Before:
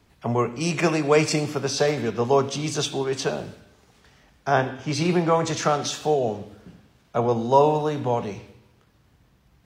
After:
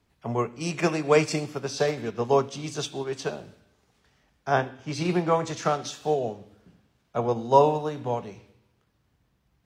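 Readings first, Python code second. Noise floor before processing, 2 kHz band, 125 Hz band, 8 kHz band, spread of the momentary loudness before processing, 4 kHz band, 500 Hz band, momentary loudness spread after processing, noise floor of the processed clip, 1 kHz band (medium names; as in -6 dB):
-61 dBFS, -3.5 dB, -4.5 dB, -6.5 dB, 9 LU, -6.0 dB, -3.0 dB, 12 LU, -70 dBFS, -2.5 dB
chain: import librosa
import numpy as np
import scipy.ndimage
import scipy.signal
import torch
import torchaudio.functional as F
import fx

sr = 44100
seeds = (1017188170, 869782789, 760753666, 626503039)

y = fx.upward_expand(x, sr, threshold_db=-32.0, expansion=1.5)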